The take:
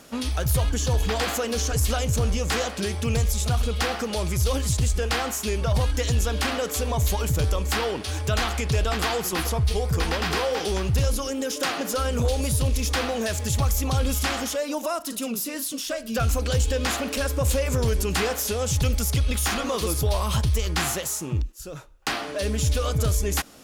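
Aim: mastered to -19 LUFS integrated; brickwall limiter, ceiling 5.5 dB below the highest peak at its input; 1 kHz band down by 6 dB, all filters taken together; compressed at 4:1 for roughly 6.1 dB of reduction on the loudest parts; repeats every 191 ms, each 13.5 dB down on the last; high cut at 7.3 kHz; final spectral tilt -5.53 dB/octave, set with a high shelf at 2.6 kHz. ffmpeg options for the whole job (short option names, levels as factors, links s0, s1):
-af "lowpass=7300,equalizer=f=1000:t=o:g=-7,highshelf=f=2600:g=-8.5,acompressor=threshold=0.0501:ratio=4,alimiter=limit=0.0631:level=0:latency=1,aecho=1:1:191|382:0.211|0.0444,volume=5.01"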